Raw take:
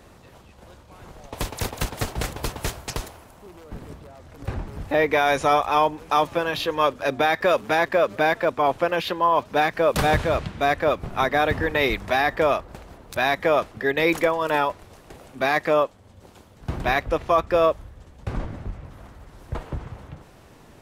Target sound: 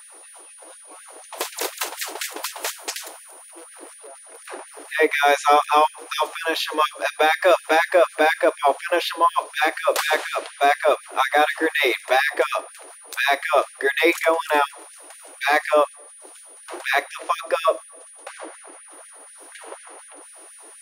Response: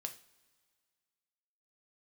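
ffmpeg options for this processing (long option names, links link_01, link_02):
-filter_complex "[0:a]aeval=exprs='val(0)+0.00447*sin(2*PI*9600*n/s)':channel_layout=same,asplit=2[link_01][link_02];[1:a]atrim=start_sample=2205,lowshelf=frequency=400:gain=10,highshelf=frequency=4900:gain=7.5[link_03];[link_02][link_03]afir=irnorm=-1:irlink=0,volume=-4dB[link_04];[link_01][link_04]amix=inputs=2:normalize=0,afftfilt=real='re*gte(b*sr/1024,270*pow(1600/270,0.5+0.5*sin(2*PI*4.1*pts/sr)))':imag='im*gte(b*sr/1024,270*pow(1600/270,0.5+0.5*sin(2*PI*4.1*pts/sr)))':win_size=1024:overlap=0.75"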